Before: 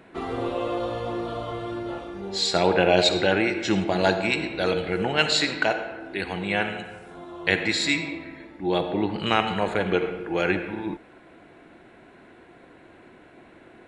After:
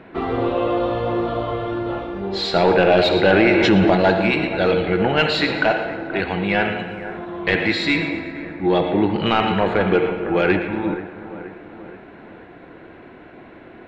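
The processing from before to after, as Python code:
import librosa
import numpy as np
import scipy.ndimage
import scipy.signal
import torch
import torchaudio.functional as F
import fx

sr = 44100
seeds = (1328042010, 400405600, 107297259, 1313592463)

y = fx.high_shelf(x, sr, hz=5800.0, db=11.0)
y = 10.0 ** (-14.0 / 20.0) * np.tanh(y / 10.0 ** (-14.0 / 20.0))
y = fx.air_absorb(y, sr, metres=340.0)
y = fx.echo_split(y, sr, split_hz=2000.0, low_ms=478, high_ms=115, feedback_pct=52, wet_db=-13.0)
y = fx.env_flatten(y, sr, amount_pct=70, at=(3.24, 3.95))
y = y * librosa.db_to_amplitude(8.5)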